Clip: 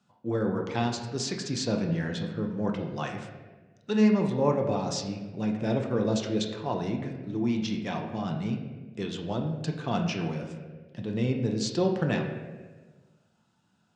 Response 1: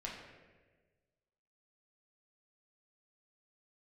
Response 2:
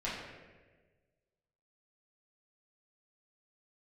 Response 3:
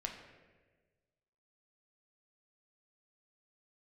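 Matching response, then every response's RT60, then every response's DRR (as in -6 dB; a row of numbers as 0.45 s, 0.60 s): 3; 1.4 s, 1.4 s, 1.4 s; -3.5 dB, -8.5 dB, 1.5 dB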